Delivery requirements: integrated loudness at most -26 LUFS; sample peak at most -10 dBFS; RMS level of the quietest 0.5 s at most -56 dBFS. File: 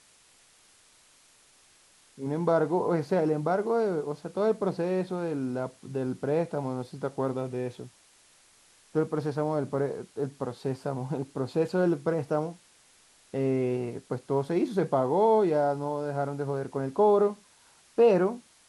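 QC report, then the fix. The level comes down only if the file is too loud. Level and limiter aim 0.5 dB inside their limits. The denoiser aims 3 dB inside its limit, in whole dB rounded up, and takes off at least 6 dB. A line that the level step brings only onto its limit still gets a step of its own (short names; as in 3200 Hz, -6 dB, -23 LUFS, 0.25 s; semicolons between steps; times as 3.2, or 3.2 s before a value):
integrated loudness -28.5 LUFS: OK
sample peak -11.5 dBFS: OK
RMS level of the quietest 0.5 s -60 dBFS: OK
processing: none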